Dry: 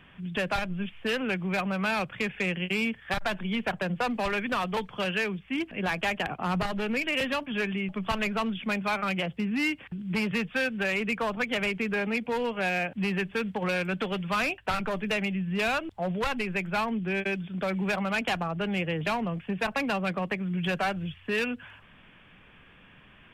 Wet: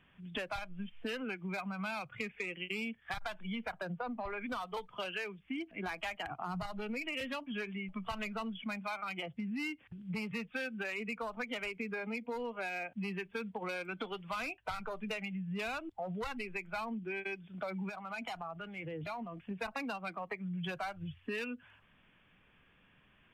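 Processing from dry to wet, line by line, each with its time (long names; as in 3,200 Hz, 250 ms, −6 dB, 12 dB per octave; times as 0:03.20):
0:03.96–0:04.41: high-frequency loss of the air 290 metres
0:17.89–0:19.51: downward compressor, threshold −32 dBFS
whole clip: noise reduction from a noise print of the clip's start 12 dB; downward compressor 4 to 1, threshold −38 dBFS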